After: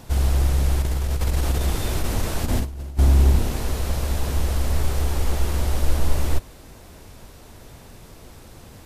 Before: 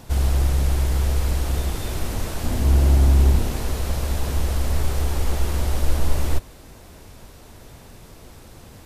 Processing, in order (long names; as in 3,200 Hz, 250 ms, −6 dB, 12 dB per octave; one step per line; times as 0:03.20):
0:00.82–0:02.99: compressor whose output falls as the input rises −21 dBFS, ratio −0.5